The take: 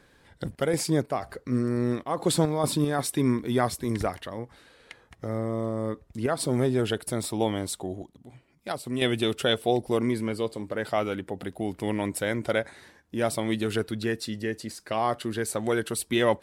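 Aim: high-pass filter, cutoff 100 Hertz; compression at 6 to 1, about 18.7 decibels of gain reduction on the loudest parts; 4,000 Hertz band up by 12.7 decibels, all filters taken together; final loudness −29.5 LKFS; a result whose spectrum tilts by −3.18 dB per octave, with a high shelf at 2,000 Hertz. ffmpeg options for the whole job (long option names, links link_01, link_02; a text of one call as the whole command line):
ffmpeg -i in.wav -af "highpass=100,highshelf=frequency=2000:gain=7.5,equalizer=frequency=4000:width_type=o:gain=8.5,acompressor=threshold=-32dB:ratio=6,volume=6.5dB" out.wav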